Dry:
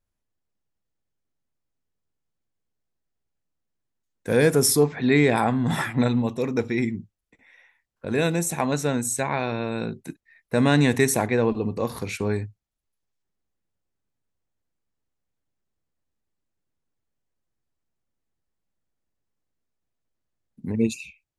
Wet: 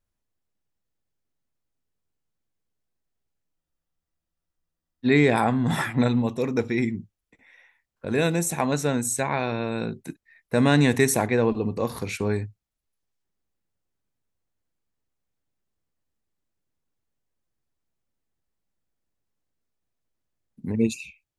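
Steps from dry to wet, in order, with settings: short-mantissa float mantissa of 8-bit; spectral freeze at 3.58 s, 1.47 s

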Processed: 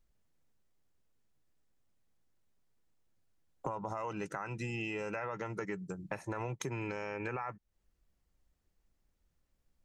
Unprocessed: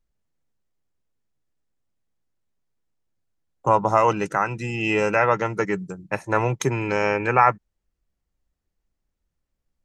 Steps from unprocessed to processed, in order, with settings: peak limiter -14.5 dBFS, peak gain reduction 11 dB; compression 6:1, threshold -38 dBFS, peak gain reduction 17 dB; trim +1.5 dB

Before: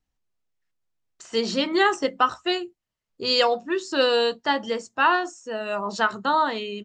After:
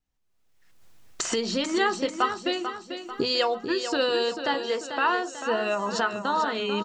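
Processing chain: recorder AGC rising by 35 dB/s; 4.54–5.43 s: steep high-pass 250 Hz 48 dB/octave; feedback delay 442 ms, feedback 48%, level -9 dB; trim -4.5 dB

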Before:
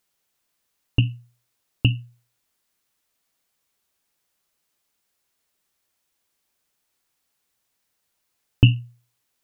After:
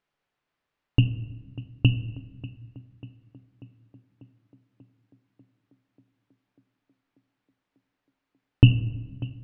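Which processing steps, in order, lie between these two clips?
low-pass 2.4 kHz 12 dB/octave; tape echo 591 ms, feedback 82%, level -15 dB, low-pass 1.6 kHz; reverberation RT60 1.3 s, pre-delay 7 ms, DRR 11.5 dB

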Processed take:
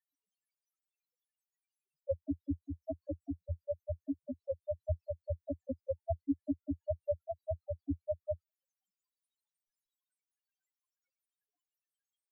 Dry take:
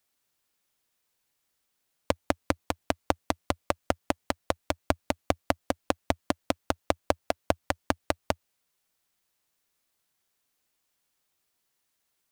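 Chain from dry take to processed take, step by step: loudest bins only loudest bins 1; rotary cabinet horn 5.5 Hz; trim +11 dB

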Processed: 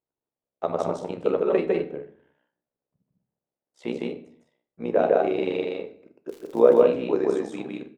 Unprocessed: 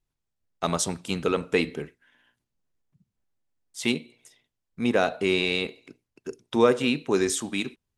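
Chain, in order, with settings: band-pass filter 540 Hz, Q 1.9; loudspeakers at several distances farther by 53 m -1 dB, 69 m -8 dB; 6.28–6.81 s: crackle 230 per s -41 dBFS; AM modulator 66 Hz, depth 65%; 1.43–1.83 s: comb 5.3 ms, depth 80%; reverberation, pre-delay 6 ms, DRR 10 dB; trim +7.5 dB

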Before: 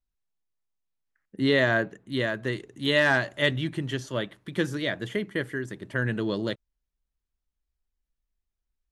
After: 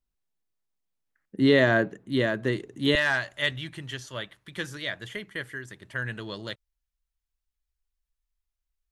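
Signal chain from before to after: peaking EQ 280 Hz +4 dB 2.6 oct, from 2.95 s -12 dB

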